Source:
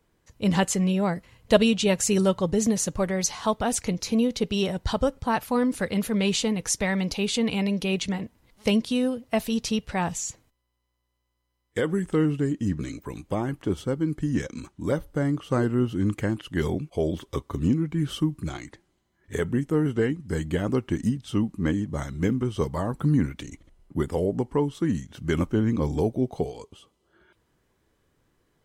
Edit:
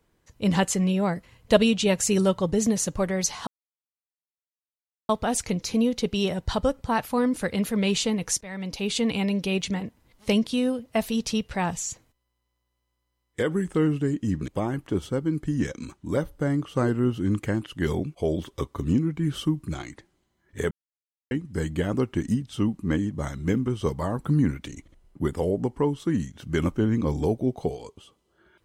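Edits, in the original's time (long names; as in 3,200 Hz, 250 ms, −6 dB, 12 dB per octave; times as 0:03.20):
0:03.47: splice in silence 1.62 s
0:06.79–0:07.34: fade in, from −19.5 dB
0:12.86–0:13.23: remove
0:19.46–0:20.06: silence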